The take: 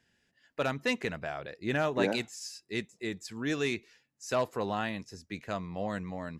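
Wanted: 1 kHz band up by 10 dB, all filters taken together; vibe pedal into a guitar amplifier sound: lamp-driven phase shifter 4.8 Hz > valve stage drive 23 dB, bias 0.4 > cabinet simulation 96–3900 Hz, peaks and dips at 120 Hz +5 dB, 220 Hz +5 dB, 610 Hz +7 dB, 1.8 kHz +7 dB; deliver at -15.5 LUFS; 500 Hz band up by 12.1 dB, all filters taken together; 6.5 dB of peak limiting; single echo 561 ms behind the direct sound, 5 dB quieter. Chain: peaking EQ 500 Hz +6.5 dB; peaking EQ 1 kHz +9 dB; peak limiter -15.5 dBFS; delay 561 ms -5 dB; lamp-driven phase shifter 4.8 Hz; valve stage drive 23 dB, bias 0.4; cabinet simulation 96–3900 Hz, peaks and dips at 120 Hz +5 dB, 220 Hz +5 dB, 610 Hz +7 dB, 1.8 kHz +7 dB; trim +15 dB

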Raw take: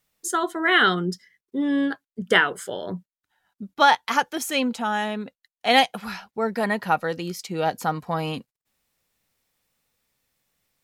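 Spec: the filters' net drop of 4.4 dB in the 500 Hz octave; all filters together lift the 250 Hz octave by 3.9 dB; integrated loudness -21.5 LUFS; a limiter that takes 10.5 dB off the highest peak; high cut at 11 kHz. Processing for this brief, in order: low-pass 11 kHz; peaking EQ 250 Hz +7 dB; peaking EQ 500 Hz -8 dB; trim +5 dB; peak limiter -10 dBFS

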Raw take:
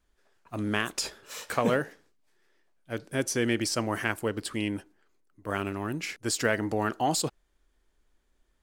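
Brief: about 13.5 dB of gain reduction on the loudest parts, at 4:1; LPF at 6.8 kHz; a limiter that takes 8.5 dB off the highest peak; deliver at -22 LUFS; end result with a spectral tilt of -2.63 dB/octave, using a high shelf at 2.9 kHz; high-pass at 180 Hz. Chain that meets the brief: high-pass 180 Hz; low-pass 6.8 kHz; treble shelf 2.9 kHz +7.5 dB; compression 4:1, threshold -37 dBFS; trim +19.5 dB; peak limiter -9.5 dBFS

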